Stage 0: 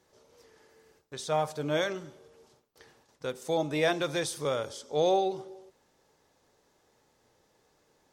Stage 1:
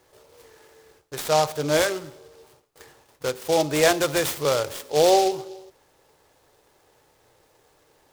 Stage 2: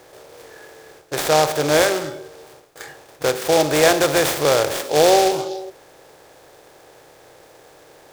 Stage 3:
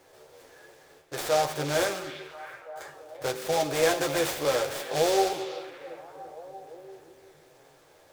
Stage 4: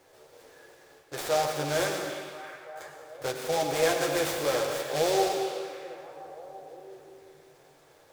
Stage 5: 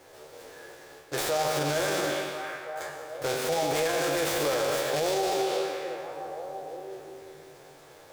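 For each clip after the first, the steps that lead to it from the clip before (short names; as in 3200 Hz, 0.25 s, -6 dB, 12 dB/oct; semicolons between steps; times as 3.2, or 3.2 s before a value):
bell 210 Hz -14.5 dB 0.44 oct; noise-modulated delay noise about 4300 Hz, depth 0.055 ms; gain +8.5 dB
per-bin compression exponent 0.6; spectral noise reduction 9 dB; gain +2 dB
chorus voices 4, 0.54 Hz, delay 11 ms, depth 3.6 ms; delay with a stepping band-pass 0.341 s, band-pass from 2800 Hz, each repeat -0.7 oct, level -8.5 dB; gain -7 dB
on a send at -5 dB: HPF 140 Hz + reverb RT60 1.6 s, pre-delay 88 ms; on the sum: gain -2 dB
spectral trails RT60 0.36 s; limiter -24 dBFS, peak gain reduction 11.5 dB; gain +5.5 dB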